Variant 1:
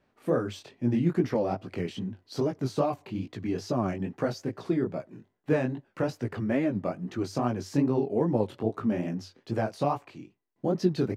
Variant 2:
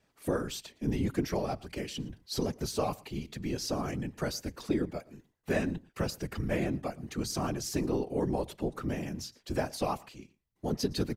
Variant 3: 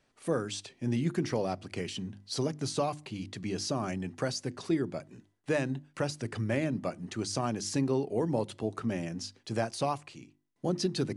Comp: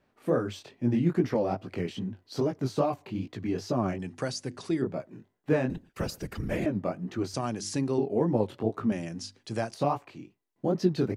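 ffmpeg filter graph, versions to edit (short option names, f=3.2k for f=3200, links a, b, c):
-filter_complex "[2:a]asplit=3[a][b][c];[0:a]asplit=5[d][e][f][g][h];[d]atrim=end=3.992[i];[a]atrim=start=3.988:end=4.822[j];[e]atrim=start=4.818:end=5.702[k];[1:a]atrim=start=5.698:end=6.662[l];[f]atrim=start=6.658:end=7.342[m];[b]atrim=start=7.338:end=7.982[n];[g]atrim=start=7.978:end=8.922[o];[c]atrim=start=8.918:end=9.742[p];[h]atrim=start=9.738[q];[i][j]acrossfade=d=0.004:c1=hsin:c2=hsin[r];[r][k]acrossfade=d=0.004:c1=hsin:c2=hsin[s];[s][l]acrossfade=d=0.004:c1=hsin:c2=hsin[t];[t][m]acrossfade=d=0.004:c1=hsin:c2=hsin[u];[u][n]acrossfade=d=0.004:c1=hsin:c2=hsin[v];[v][o]acrossfade=d=0.004:c1=hsin:c2=hsin[w];[w][p]acrossfade=d=0.004:c1=hsin:c2=hsin[x];[x][q]acrossfade=d=0.004:c1=hsin:c2=hsin"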